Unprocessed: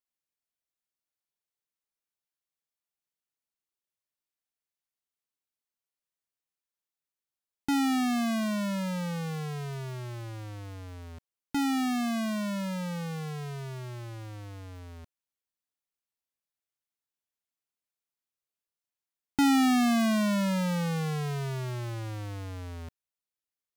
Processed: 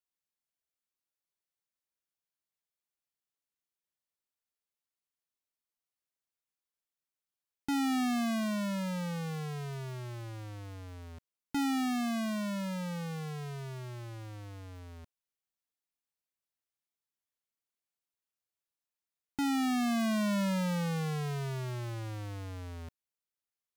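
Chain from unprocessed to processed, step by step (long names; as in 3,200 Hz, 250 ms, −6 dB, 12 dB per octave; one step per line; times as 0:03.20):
brickwall limiter −26.5 dBFS, peak gain reduction 5.5 dB
level −3 dB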